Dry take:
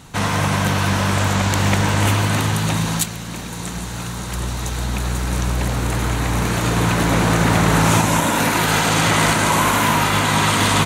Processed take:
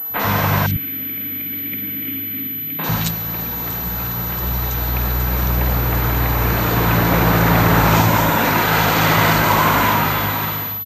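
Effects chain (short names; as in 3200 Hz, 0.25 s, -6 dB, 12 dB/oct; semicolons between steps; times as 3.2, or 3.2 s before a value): ending faded out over 1.05 s; 0.66–2.79 vowel filter i; three bands offset in time mids, highs, lows 50/100 ms, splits 240/3200 Hz; pulse-width modulation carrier 12000 Hz; gain +2.5 dB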